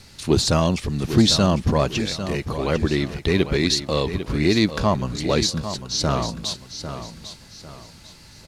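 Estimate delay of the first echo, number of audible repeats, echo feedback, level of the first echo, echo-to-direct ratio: 0.799 s, 3, 34%, -10.5 dB, -10.0 dB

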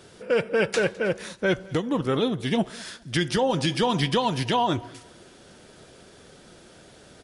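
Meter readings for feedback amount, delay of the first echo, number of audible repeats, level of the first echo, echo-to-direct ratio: 29%, 0.208 s, 2, -23.5 dB, -23.0 dB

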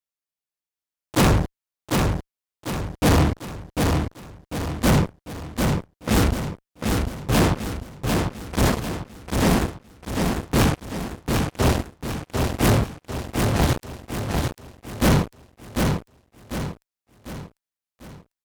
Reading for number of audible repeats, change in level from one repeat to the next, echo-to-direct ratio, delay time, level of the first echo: 5, -7.0 dB, -3.0 dB, 0.747 s, -4.0 dB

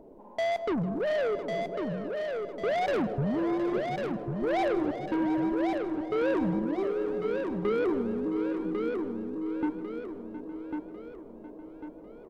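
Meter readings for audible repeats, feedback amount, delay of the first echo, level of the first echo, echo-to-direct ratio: 14, no steady repeat, 0.158 s, -18.5 dB, -3.0 dB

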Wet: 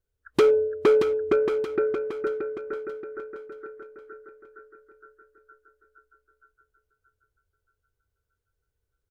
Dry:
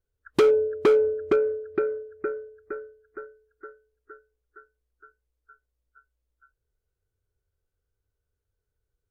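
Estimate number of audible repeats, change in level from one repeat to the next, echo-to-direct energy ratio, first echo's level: 4, -7.0 dB, -6.0 dB, -7.0 dB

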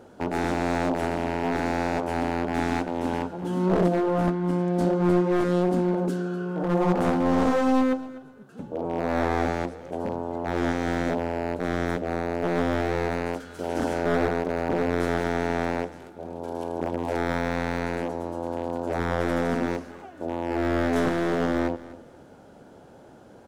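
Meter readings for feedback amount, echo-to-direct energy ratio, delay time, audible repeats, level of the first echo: 21%, -18.0 dB, 0.25 s, 2, -18.0 dB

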